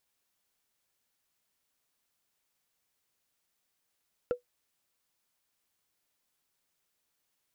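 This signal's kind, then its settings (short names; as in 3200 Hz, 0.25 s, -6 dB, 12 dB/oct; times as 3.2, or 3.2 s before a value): wood hit, lowest mode 491 Hz, decay 0.12 s, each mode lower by 12 dB, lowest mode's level -21 dB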